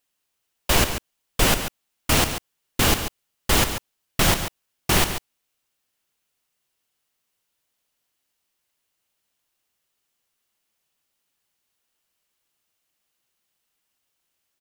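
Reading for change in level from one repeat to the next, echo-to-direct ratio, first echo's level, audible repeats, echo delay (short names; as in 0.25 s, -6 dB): no steady repeat, -10.0 dB, -10.0 dB, 1, 0.14 s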